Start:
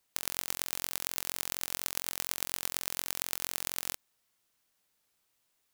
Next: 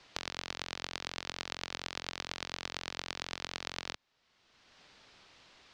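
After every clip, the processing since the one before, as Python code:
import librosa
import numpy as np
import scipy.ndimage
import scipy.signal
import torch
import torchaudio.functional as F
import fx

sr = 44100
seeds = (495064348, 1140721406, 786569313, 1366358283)

y = scipy.signal.sosfilt(scipy.signal.butter(4, 4900.0, 'lowpass', fs=sr, output='sos'), x)
y = fx.band_squash(y, sr, depth_pct=70)
y = y * librosa.db_to_amplitude(1.0)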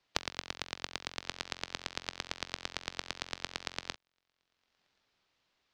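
y = x + 10.0 ** (-24.0 / 20.0) * np.pad(x, (int(1077 * sr / 1000.0), 0))[:len(x)]
y = fx.upward_expand(y, sr, threshold_db=-53.0, expansion=2.5)
y = y * librosa.db_to_amplitude(7.5)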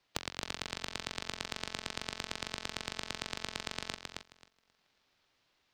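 y = 10.0 ** (-18.0 / 20.0) * np.tanh(x / 10.0 ** (-18.0 / 20.0))
y = fx.echo_feedback(y, sr, ms=267, feedback_pct=17, wet_db=-4)
y = y * librosa.db_to_amplitude(1.5)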